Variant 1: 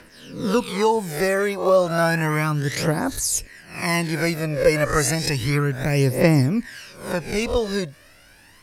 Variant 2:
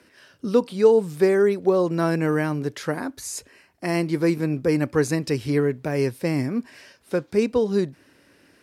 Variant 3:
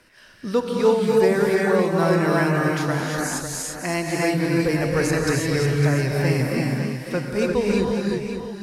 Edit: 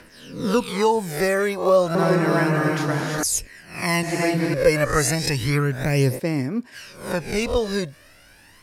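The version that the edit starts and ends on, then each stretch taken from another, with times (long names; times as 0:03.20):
1
0:01.95–0:03.23: punch in from 3
0:04.03–0:04.54: punch in from 3
0:06.17–0:06.74: punch in from 2, crossfade 0.06 s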